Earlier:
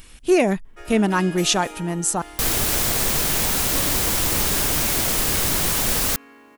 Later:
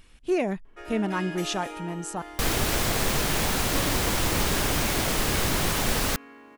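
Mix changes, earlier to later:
speech -8.0 dB; master: add high shelf 5800 Hz -11 dB

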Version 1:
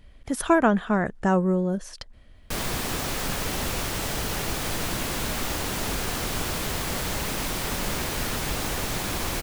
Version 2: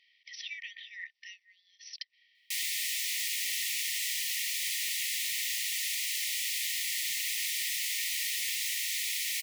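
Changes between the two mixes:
speech: add brick-wall FIR low-pass 6000 Hz; master: add brick-wall FIR high-pass 1800 Hz

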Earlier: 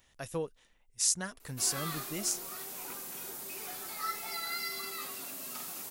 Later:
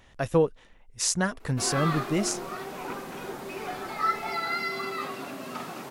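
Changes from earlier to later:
background: add high shelf 5100 Hz -11 dB; master: remove pre-emphasis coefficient 0.8

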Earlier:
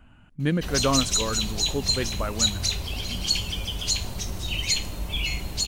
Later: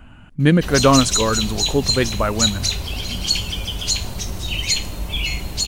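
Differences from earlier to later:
speech +10.0 dB; background +4.5 dB

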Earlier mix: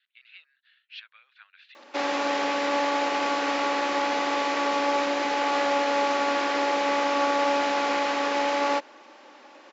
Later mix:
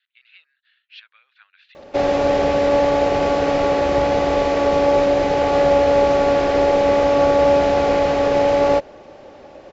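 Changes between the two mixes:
background: add band shelf 530 Hz +11 dB 1.2 oct; master: remove Bessel high-pass 440 Hz, order 8

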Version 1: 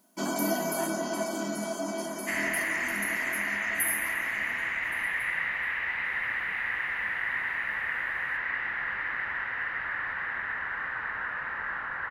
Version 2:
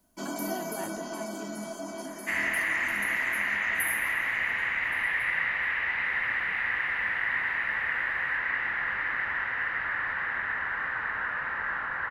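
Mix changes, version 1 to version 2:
speech: remove steep high-pass 600 Hz; first sound -5.0 dB; second sound: send +8.5 dB

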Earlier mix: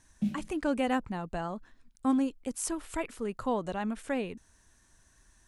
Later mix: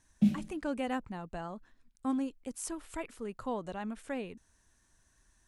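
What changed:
speech -5.5 dB; background +5.0 dB

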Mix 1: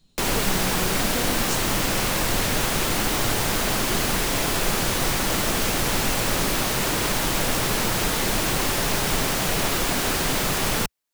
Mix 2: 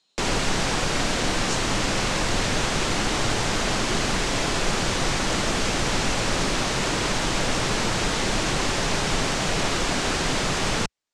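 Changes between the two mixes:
speech: add HPF 670 Hz 12 dB/oct; master: add LPF 7800 Hz 24 dB/oct

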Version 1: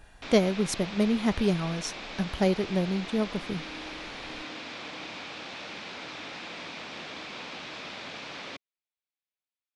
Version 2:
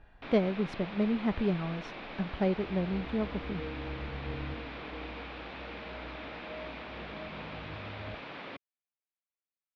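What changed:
speech -3.5 dB; second sound: remove vowel filter u; master: add air absorption 360 m

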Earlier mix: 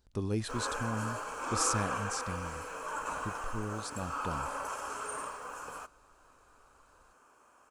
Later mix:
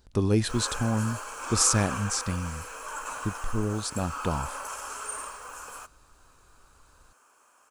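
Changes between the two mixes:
speech +9.5 dB; background: add tilt +2.5 dB/oct

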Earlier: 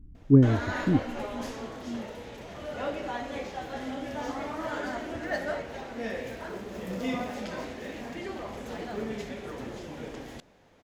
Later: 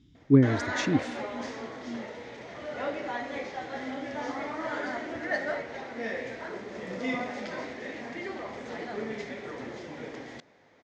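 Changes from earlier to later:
speech: remove Gaussian blur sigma 5.7 samples; master: add speaker cabinet 130–6400 Hz, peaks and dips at 190 Hz -5 dB, 2000 Hz +7 dB, 2800 Hz -4 dB

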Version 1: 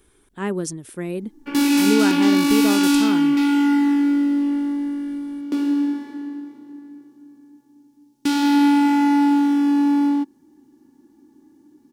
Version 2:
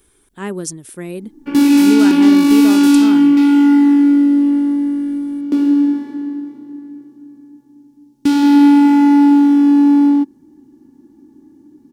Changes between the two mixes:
speech: add high shelf 4700 Hz +7 dB; background: add low shelf 460 Hz +10.5 dB

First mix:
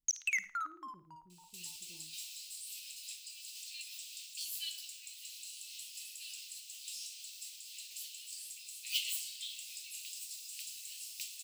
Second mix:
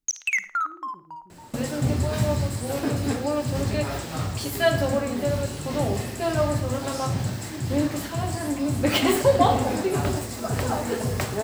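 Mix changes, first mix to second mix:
speech -9.5 dB; second sound: remove Chebyshev high-pass 2600 Hz, order 5; master: remove passive tone stack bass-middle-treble 5-5-5

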